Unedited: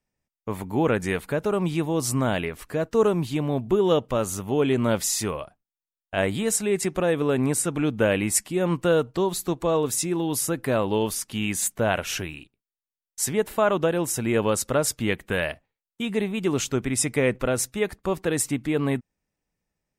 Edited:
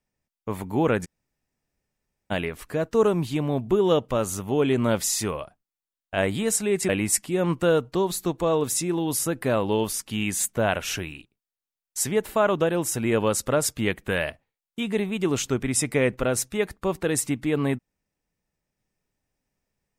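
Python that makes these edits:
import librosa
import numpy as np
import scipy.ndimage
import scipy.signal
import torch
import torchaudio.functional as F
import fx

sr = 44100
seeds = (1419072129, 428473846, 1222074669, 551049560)

y = fx.edit(x, sr, fx.room_tone_fill(start_s=1.05, length_s=1.26, crossfade_s=0.02),
    fx.cut(start_s=6.89, length_s=1.22), tone=tone)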